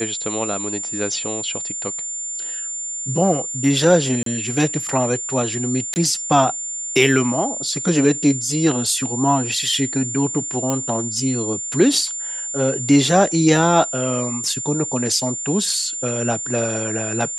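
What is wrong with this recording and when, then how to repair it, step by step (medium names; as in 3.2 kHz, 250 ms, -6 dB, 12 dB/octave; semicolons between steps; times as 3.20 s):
whine 7.2 kHz -25 dBFS
4.23–4.26 s: dropout 33 ms
5.94–5.96 s: dropout 19 ms
10.70 s: pop -8 dBFS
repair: de-click; band-stop 7.2 kHz, Q 30; interpolate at 4.23 s, 33 ms; interpolate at 5.94 s, 19 ms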